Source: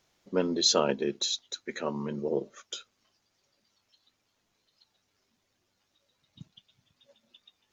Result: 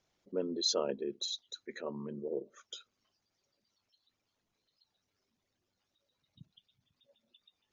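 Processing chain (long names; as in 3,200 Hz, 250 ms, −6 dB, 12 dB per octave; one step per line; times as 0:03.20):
spectral envelope exaggerated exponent 1.5
level −7.5 dB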